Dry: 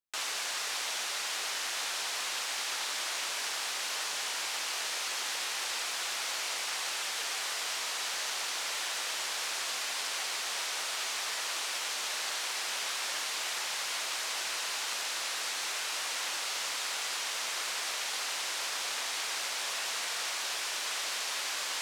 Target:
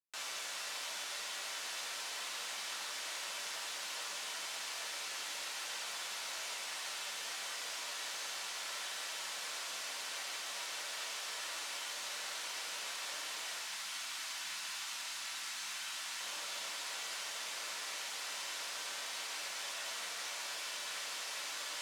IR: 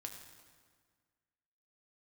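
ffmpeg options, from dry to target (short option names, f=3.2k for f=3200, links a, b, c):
-filter_complex "[0:a]asettb=1/sr,asplit=3[a][b][c];[a]atrim=end=13.594[d];[b]atrim=start=13.59:end=16.21,asetpts=PTS-STARTPTS,afade=t=in:d=0.004:c=qsin,afade=t=out:st=2.616:d=0.004:c=qsin,equalizer=f=490:t=o:w=0.77:g=-14[e];[c]atrim=start=16.206[f];[d][e]acrossfade=d=0.004:c1=hsin:c2=qsin[g];[g][f]acrossfade=d=0.004:c1=qsin:c2=hsin[h];[1:a]atrim=start_sample=2205,asetrate=83790,aresample=44100[i];[h][i]afir=irnorm=-1:irlink=0,volume=2dB"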